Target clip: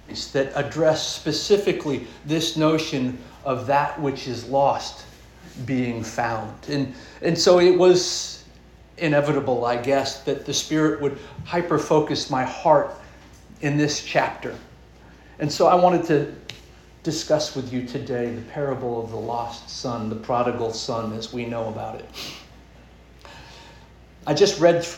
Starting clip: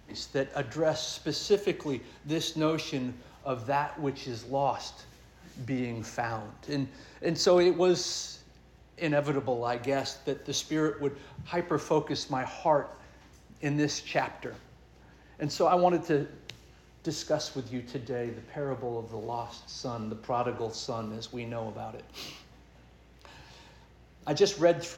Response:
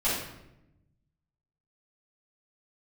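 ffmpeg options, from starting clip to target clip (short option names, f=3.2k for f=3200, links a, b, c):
-filter_complex "[0:a]asplit=2[a][b];[1:a]atrim=start_sample=2205,atrim=end_sample=4410[c];[b][c]afir=irnorm=-1:irlink=0,volume=-17dB[d];[a][d]amix=inputs=2:normalize=0,volume=7dB"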